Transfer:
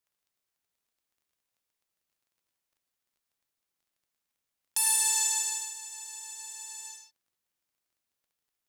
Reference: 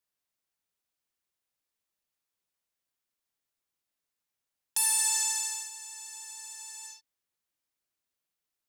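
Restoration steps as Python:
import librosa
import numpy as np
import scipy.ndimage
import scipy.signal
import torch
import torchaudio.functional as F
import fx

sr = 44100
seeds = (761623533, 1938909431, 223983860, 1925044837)

y = fx.fix_declick_ar(x, sr, threshold=6.5)
y = fx.fix_echo_inverse(y, sr, delay_ms=102, level_db=-5.0)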